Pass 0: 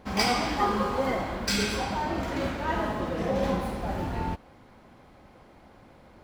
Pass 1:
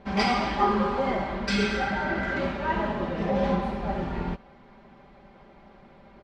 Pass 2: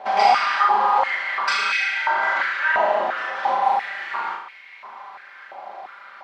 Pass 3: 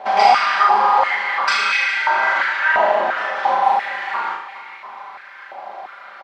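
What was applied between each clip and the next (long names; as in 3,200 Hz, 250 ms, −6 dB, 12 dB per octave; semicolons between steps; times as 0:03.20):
healed spectral selection 0:01.68–0:02.38, 930–2,100 Hz before; low-pass filter 3,800 Hz 12 dB per octave; comb filter 5.1 ms
downward compressor 2.5 to 1, threshold −33 dBFS, peak gain reduction 10.5 dB; flutter between parallel walls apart 6.4 metres, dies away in 0.6 s; high-pass on a step sequencer 2.9 Hz 730–2,200 Hz; level +9 dB
repeating echo 412 ms, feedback 33%, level −15 dB; level +3.5 dB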